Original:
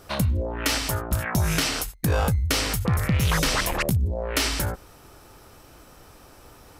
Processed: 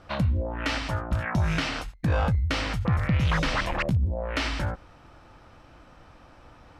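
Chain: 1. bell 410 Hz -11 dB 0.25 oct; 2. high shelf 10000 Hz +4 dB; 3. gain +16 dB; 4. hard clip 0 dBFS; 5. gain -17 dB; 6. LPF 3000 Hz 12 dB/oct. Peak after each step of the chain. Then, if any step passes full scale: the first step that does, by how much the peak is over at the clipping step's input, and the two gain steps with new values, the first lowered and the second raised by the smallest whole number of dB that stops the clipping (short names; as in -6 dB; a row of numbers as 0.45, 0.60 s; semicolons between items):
-11.5, -10.5, +5.5, 0.0, -17.0, -16.5 dBFS; step 3, 5.5 dB; step 3 +10 dB, step 5 -11 dB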